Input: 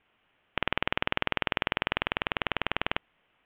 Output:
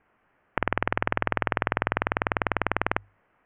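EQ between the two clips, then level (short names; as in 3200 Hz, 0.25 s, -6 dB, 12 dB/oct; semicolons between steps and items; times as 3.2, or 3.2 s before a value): LPF 1900 Hz 24 dB/oct; notches 50/100 Hz; +5.5 dB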